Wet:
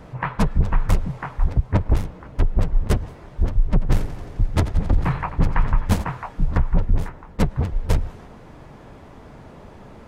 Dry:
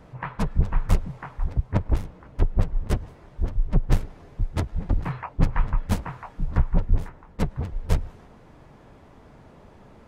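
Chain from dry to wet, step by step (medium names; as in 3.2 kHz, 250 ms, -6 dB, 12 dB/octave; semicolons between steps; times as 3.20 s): peak limiter -15 dBFS, peak gain reduction 8.5 dB; 3.66–6.04 s: modulated delay 88 ms, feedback 72%, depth 54 cents, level -13.5 dB; trim +7 dB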